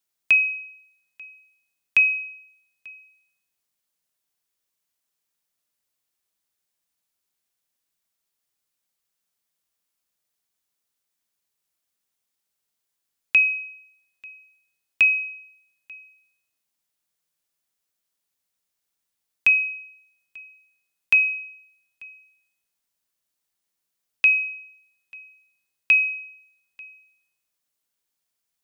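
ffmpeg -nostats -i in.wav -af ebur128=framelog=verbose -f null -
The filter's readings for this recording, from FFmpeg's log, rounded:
Integrated loudness:
  I:         -19.7 LUFS
  Threshold: -34.0 LUFS
Loudness range:
  LRA:         3.0 LU
  Threshold: -46.2 LUFS
  LRA low:   -26.7 LUFS
  LRA high:  -23.7 LUFS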